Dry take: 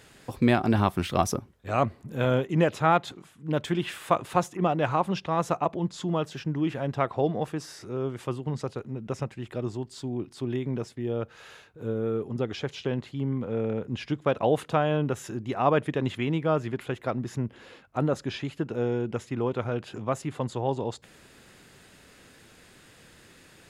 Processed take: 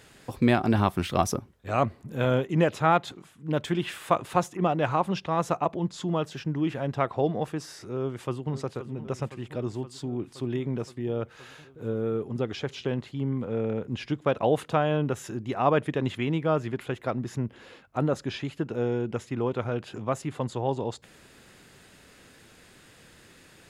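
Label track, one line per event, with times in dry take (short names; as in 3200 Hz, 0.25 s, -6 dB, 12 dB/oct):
8.000000	8.520000	echo throw 0.52 s, feedback 80%, level -13 dB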